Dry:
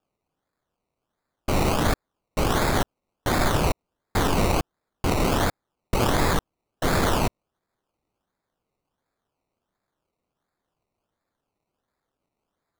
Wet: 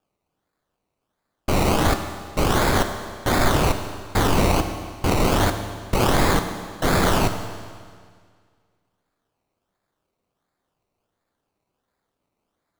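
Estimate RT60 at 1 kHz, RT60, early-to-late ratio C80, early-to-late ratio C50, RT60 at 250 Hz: 1.9 s, 1.9 s, 9.0 dB, 8.0 dB, 1.9 s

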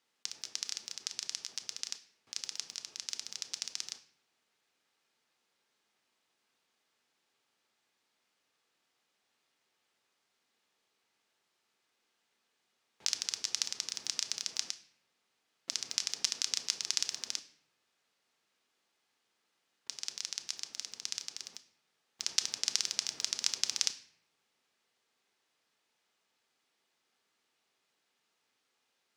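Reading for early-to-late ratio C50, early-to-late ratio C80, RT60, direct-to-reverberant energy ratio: 14.0 dB, 17.5 dB, 0.65 s, 8.5 dB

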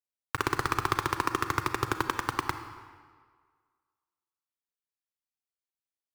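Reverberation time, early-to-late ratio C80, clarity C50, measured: 1.7 s, 10.5 dB, 9.0 dB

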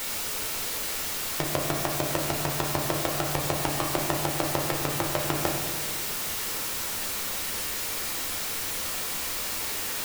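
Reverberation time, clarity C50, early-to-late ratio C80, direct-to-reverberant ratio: 1.5 s, 3.0 dB, 5.0 dB, -0.5 dB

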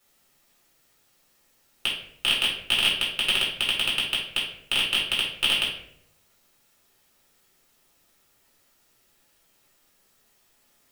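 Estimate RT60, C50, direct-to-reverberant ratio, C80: 0.75 s, 4.0 dB, -6.0 dB, 8.0 dB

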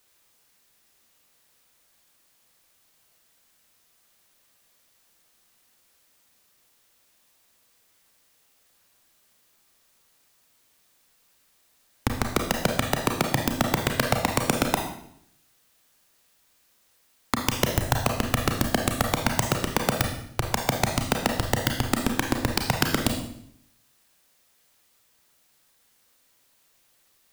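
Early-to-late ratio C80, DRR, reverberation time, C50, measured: 9.0 dB, 2.5 dB, 0.70 s, 5.5 dB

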